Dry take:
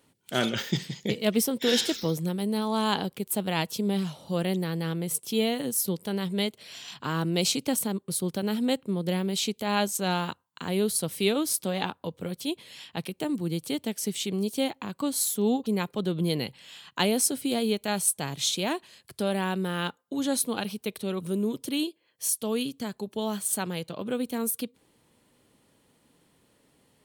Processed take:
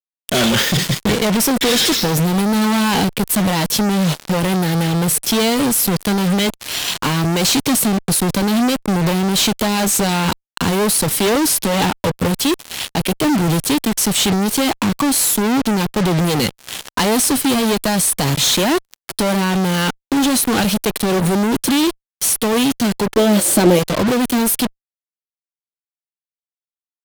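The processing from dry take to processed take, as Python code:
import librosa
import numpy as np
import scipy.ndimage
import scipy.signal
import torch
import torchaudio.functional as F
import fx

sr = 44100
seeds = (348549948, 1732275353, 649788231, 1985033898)

y = fx.fuzz(x, sr, gain_db=44.0, gate_db=-44.0)
y = fx.cheby_harmonics(y, sr, harmonics=(7, 8), levels_db=(-18, -21), full_scale_db=-9.5)
y = fx.small_body(y, sr, hz=(340.0, 540.0), ring_ms=35, db=14, at=(23.17, 23.79))
y = y * 10.0 ** (-1.5 / 20.0)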